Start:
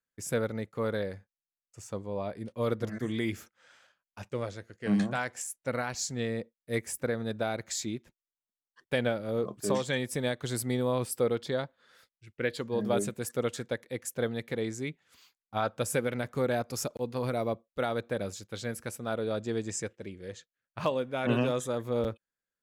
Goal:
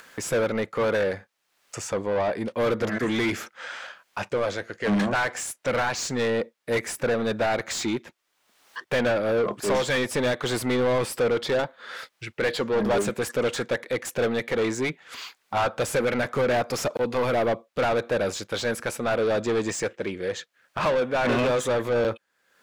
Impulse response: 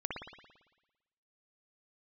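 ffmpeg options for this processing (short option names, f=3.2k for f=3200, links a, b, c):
-filter_complex "[0:a]asplit=2[a][b];[b]highpass=f=720:p=1,volume=27dB,asoftclip=type=tanh:threshold=-15dB[c];[a][c]amix=inputs=2:normalize=0,lowpass=f=2.3k:p=1,volume=-6dB,acompressor=mode=upward:threshold=-29dB:ratio=2.5"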